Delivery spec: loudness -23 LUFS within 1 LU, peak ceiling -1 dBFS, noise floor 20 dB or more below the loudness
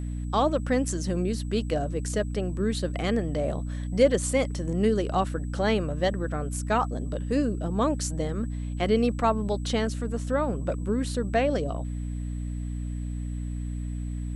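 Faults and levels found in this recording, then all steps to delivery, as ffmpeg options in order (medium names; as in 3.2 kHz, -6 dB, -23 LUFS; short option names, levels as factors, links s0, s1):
hum 60 Hz; highest harmonic 300 Hz; hum level -29 dBFS; steady tone 7.9 kHz; tone level -55 dBFS; loudness -28.0 LUFS; peak level -8.5 dBFS; loudness target -23.0 LUFS
-> -af "bandreject=f=60:t=h:w=4,bandreject=f=120:t=h:w=4,bandreject=f=180:t=h:w=4,bandreject=f=240:t=h:w=4,bandreject=f=300:t=h:w=4"
-af "bandreject=f=7900:w=30"
-af "volume=1.78"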